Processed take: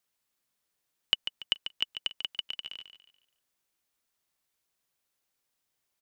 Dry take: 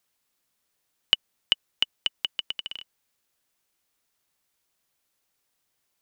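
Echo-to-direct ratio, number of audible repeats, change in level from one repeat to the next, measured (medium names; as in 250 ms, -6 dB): -9.5 dB, 3, -9.5 dB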